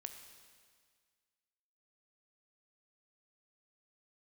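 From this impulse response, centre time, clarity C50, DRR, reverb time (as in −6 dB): 30 ms, 7.5 dB, 6.0 dB, 1.8 s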